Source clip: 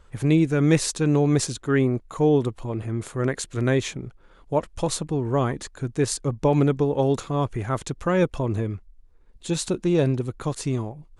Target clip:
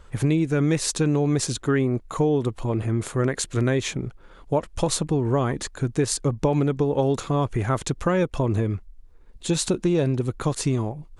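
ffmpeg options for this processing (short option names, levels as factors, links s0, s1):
-af "acompressor=threshold=0.0708:ratio=5,volume=1.78"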